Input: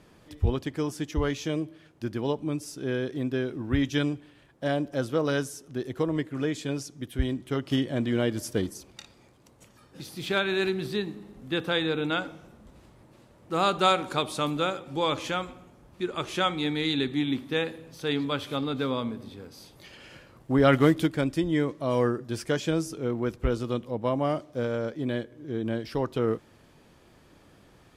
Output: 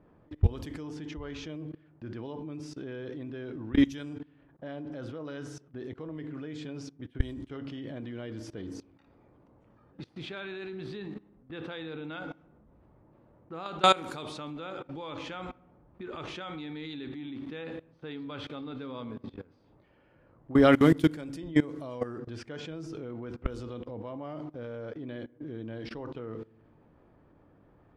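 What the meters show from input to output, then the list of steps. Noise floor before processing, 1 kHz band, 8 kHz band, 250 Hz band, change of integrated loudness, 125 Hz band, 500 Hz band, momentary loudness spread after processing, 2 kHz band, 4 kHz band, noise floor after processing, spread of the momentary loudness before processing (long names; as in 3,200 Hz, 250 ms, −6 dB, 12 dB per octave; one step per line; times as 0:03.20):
−57 dBFS, −4.5 dB, −10.0 dB, −3.5 dB, −5.0 dB, −5.0 dB, −6.5 dB, 17 LU, −7.0 dB, −7.0 dB, −62 dBFS, 10 LU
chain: feedback delay network reverb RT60 0.63 s, low-frequency decay 1.55×, high-frequency decay 0.55×, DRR 13.5 dB
output level in coarse steps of 21 dB
low-pass that shuts in the quiet parts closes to 1,100 Hz, open at −31.5 dBFS
level +3 dB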